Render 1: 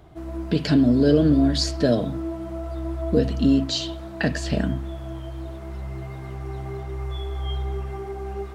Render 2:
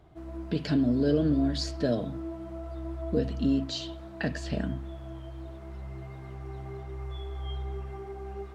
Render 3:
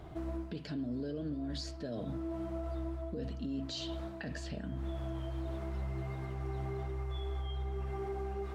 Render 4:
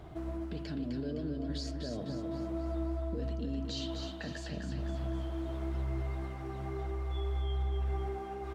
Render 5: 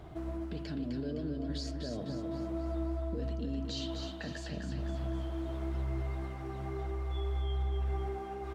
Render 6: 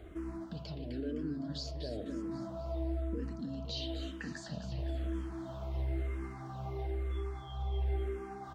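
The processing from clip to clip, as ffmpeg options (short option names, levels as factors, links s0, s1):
-af "highshelf=f=7000:g=-6.5,volume=0.422"
-af "areverse,acompressor=threshold=0.0141:ratio=12,areverse,alimiter=level_in=5.31:limit=0.0631:level=0:latency=1:release=297,volume=0.188,volume=2.51"
-af "aecho=1:1:256|512|768|1024|1280|1536:0.531|0.255|0.122|0.0587|0.0282|0.0135"
-af anull
-filter_complex "[0:a]asplit=2[s0][s1];[s1]afreqshift=-1[s2];[s0][s2]amix=inputs=2:normalize=1,volume=1.12"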